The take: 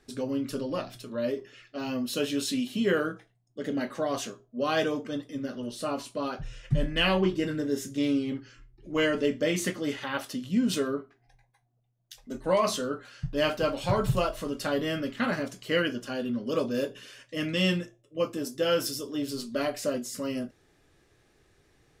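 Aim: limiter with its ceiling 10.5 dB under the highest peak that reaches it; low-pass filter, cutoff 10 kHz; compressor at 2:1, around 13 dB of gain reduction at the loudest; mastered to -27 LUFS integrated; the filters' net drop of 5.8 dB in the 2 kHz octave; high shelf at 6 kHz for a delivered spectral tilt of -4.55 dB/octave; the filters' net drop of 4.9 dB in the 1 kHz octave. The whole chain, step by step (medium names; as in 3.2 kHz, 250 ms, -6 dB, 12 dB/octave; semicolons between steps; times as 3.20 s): low-pass 10 kHz; peaking EQ 1 kHz -4.5 dB; peaking EQ 2 kHz -7 dB; treble shelf 6 kHz +4.5 dB; compression 2:1, threshold -45 dBFS; trim +18.5 dB; peak limiter -18 dBFS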